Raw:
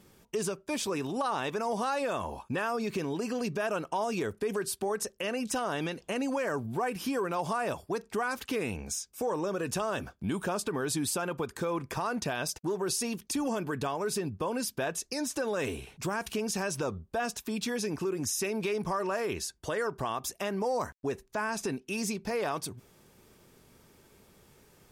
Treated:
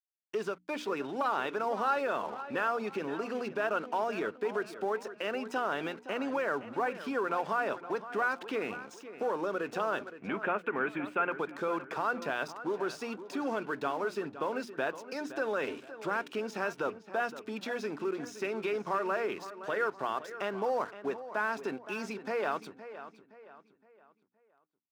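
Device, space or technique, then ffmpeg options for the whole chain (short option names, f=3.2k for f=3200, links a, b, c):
pocket radio on a weak battery: -filter_complex "[0:a]highpass=260,lowpass=3.1k,aeval=exprs='sgn(val(0))*max(abs(val(0))-0.00251,0)':c=same,highpass=110,equalizer=f=1.4k:t=o:w=0.21:g=8,bandreject=f=60:t=h:w=6,bandreject=f=120:t=h:w=6,bandreject=f=180:t=h:w=6,bandreject=f=240:t=h:w=6,bandreject=f=300:t=h:w=6,asplit=3[a][b][c];[a]afade=t=out:st=10.14:d=0.02[d];[b]highshelf=f=3.4k:t=q:w=3:g=-12,afade=t=in:st=10.14:d=0.02,afade=t=out:st=11.31:d=0.02[e];[c]afade=t=in:st=11.31:d=0.02[f];[d][e][f]amix=inputs=3:normalize=0,asplit=2[g][h];[h]adelay=517,lowpass=f=4k:p=1,volume=-13dB,asplit=2[i][j];[j]adelay=517,lowpass=f=4k:p=1,volume=0.39,asplit=2[k][l];[l]adelay=517,lowpass=f=4k:p=1,volume=0.39,asplit=2[m][n];[n]adelay=517,lowpass=f=4k:p=1,volume=0.39[o];[g][i][k][m][o]amix=inputs=5:normalize=0"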